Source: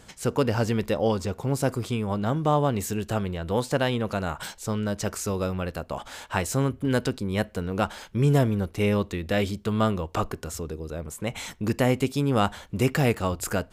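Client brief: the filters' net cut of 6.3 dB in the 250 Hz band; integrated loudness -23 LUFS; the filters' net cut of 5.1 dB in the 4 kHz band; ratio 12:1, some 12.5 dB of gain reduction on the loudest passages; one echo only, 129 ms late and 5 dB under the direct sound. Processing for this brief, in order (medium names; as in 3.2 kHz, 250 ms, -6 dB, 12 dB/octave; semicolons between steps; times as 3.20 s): peaking EQ 250 Hz -8.5 dB; peaking EQ 4 kHz -7.5 dB; compression 12:1, threshold -32 dBFS; delay 129 ms -5 dB; trim +13.5 dB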